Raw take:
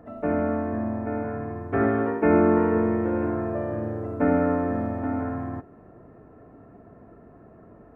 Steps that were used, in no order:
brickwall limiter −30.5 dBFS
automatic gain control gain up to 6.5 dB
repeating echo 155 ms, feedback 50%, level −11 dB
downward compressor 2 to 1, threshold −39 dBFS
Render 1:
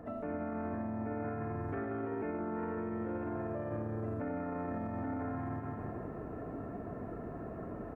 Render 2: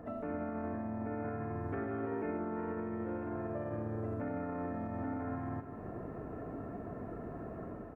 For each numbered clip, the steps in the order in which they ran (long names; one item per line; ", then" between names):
repeating echo, then downward compressor, then automatic gain control, then brickwall limiter
automatic gain control, then downward compressor, then brickwall limiter, then repeating echo